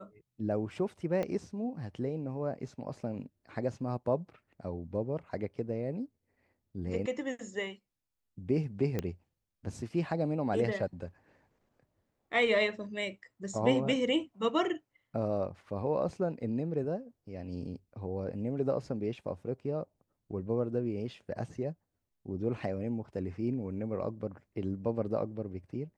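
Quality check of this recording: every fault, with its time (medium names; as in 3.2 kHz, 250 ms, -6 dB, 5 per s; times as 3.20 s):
1.23 s: pop -22 dBFS
8.99 s: pop -19 dBFS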